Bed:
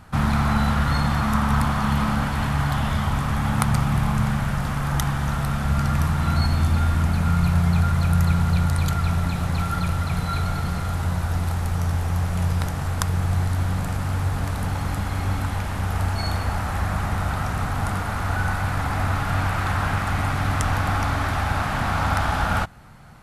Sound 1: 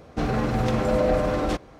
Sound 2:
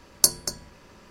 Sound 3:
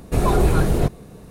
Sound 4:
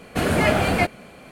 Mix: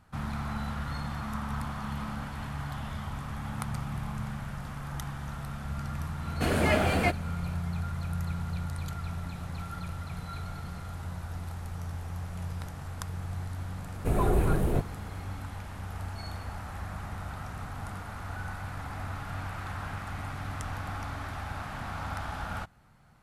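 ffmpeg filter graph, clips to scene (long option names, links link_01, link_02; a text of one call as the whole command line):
ffmpeg -i bed.wav -i cue0.wav -i cue1.wav -i cue2.wav -i cue3.wav -filter_complex "[0:a]volume=-14dB[link_01];[3:a]equalizer=frequency=5200:width_type=o:width=0.89:gain=-12.5[link_02];[4:a]atrim=end=1.31,asetpts=PTS-STARTPTS,volume=-6.5dB,afade=type=in:duration=0.004:curve=hsin,afade=type=out:start_time=1.306:duration=0.004:curve=hsin,adelay=6250[link_03];[link_02]atrim=end=1.3,asetpts=PTS-STARTPTS,volume=-8dB,afade=type=in:duration=0.004:curve=hsin,afade=type=out:start_time=1.296:duration=0.004:curve=hsin,adelay=13930[link_04];[link_01][link_03][link_04]amix=inputs=3:normalize=0" out.wav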